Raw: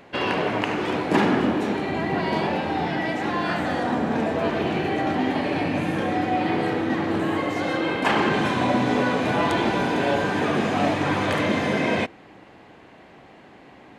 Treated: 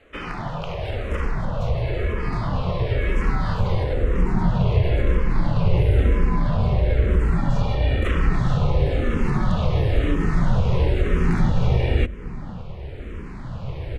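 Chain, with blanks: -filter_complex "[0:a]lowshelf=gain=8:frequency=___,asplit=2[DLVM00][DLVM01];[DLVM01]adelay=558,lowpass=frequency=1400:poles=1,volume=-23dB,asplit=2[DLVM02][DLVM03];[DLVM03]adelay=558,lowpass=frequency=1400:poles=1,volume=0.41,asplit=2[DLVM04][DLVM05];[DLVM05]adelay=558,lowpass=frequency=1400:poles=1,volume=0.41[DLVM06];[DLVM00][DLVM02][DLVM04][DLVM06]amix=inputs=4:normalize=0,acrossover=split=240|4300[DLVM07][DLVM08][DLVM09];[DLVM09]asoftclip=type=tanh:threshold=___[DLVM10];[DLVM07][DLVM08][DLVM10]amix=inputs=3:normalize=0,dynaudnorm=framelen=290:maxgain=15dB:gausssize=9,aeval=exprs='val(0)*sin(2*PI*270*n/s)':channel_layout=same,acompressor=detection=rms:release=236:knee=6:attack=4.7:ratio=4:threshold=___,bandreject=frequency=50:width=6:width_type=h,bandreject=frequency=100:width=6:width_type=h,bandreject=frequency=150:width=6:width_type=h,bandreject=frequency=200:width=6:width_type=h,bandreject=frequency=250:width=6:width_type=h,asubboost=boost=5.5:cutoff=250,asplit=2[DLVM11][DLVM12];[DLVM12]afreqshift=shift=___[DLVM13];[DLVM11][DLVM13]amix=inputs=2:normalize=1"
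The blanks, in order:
190, -36.5dB, -19dB, -1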